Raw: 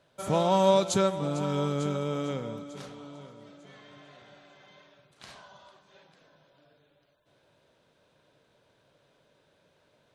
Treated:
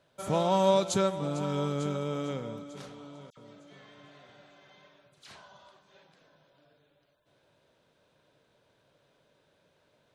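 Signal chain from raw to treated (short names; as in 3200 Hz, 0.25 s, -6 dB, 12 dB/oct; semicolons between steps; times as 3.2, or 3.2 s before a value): 3.3–5.36 dispersion lows, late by 72 ms, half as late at 2300 Hz; gain -2 dB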